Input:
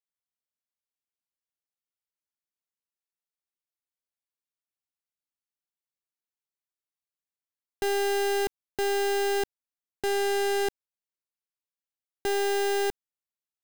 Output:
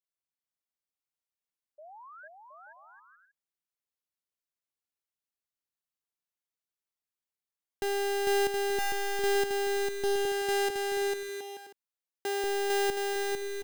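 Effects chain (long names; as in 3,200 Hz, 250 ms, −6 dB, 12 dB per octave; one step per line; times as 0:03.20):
0:01.78–0:02.28: sound drawn into the spectrogram rise 580–1,700 Hz −45 dBFS
0:10.25–0:12.44: high-pass filter 310 Hz 12 dB per octave
bouncing-ball delay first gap 450 ms, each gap 0.6×, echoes 5
level −4 dB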